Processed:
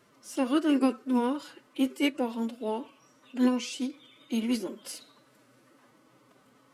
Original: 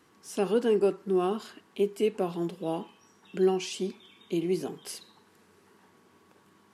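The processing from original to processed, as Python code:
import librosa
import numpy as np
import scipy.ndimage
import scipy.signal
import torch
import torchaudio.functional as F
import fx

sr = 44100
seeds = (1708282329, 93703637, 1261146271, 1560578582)

y = fx.pitch_keep_formants(x, sr, semitones=5.0)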